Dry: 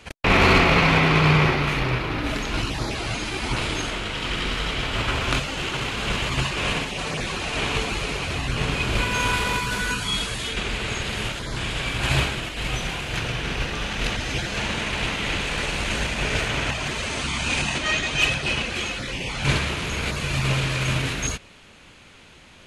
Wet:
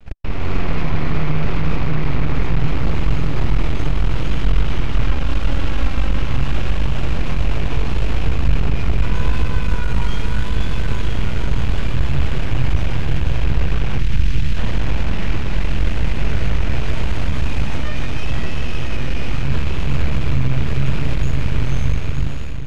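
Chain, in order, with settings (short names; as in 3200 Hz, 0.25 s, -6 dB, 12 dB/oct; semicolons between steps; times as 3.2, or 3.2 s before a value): 5.02–6.21 comb 3.7 ms, depth 79%; diffused feedback echo 0.553 s, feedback 64%, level -3 dB; vibrato 0.77 Hz 53 cents; half-wave rectifier; 13.99–14.57 bell 650 Hz -13 dB 2 oct; limiter -18 dBFS, peak gain reduction 13.5 dB; AGC gain up to 6 dB; RIAA curve playback; gain -3.5 dB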